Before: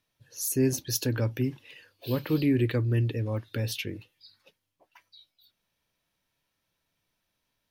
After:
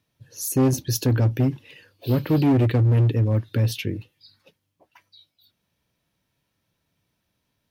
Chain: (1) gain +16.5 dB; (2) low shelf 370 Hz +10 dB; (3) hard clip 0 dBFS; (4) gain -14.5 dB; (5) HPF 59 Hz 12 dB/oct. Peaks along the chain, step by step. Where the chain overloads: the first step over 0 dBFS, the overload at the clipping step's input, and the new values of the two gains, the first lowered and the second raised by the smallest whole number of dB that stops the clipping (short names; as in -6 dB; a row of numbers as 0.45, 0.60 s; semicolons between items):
+3.0, +9.0, 0.0, -14.5, -10.5 dBFS; step 1, 9.0 dB; step 1 +7.5 dB, step 4 -5.5 dB